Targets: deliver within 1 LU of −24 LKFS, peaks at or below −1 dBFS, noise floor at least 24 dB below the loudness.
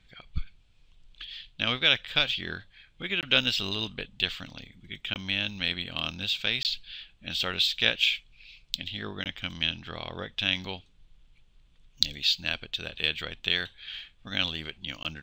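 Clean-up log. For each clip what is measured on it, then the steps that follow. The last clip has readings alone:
number of dropouts 5; longest dropout 18 ms; integrated loudness −28.0 LKFS; sample peak −1.5 dBFS; target loudness −24.0 LKFS
→ repair the gap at 0:03.21/0:05.14/0:06.63/0:09.24/0:15.03, 18 ms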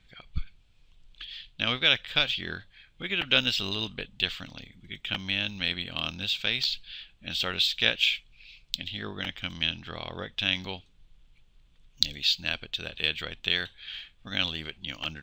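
number of dropouts 0; integrated loudness −28.0 LKFS; sample peak −1.5 dBFS; target loudness −24.0 LKFS
→ level +4 dB
brickwall limiter −1 dBFS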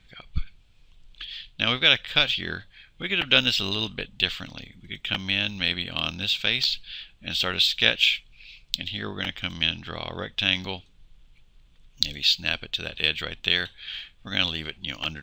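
integrated loudness −24.0 LKFS; sample peak −1.0 dBFS; background noise floor −57 dBFS

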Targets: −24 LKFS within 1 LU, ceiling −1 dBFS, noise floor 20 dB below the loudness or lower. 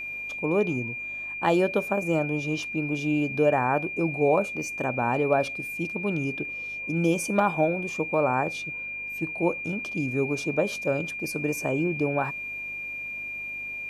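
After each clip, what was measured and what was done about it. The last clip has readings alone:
mains hum 50 Hz; hum harmonics up to 300 Hz; level of the hum −47 dBFS; interfering tone 2,400 Hz; level of the tone −32 dBFS; integrated loudness −27.0 LKFS; sample peak −9.5 dBFS; target loudness −24.0 LKFS
→ hum removal 50 Hz, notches 6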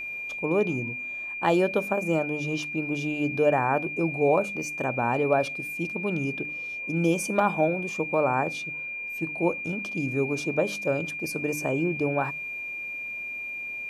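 mains hum none found; interfering tone 2,400 Hz; level of the tone −32 dBFS
→ notch filter 2,400 Hz, Q 30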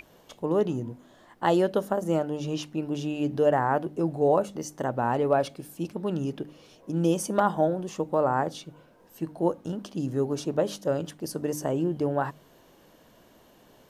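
interfering tone none found; integrated loudness −27.5 LKFS; sample peak −9.5 dBFS; target loudness −24.0 LKFS
→ level +3.5 dB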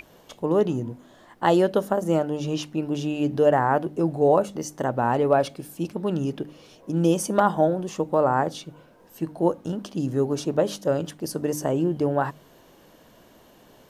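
integrated loudness −24.0 LKFS; sample peak −6.0 dBFS; background noise floor −54 dBFS

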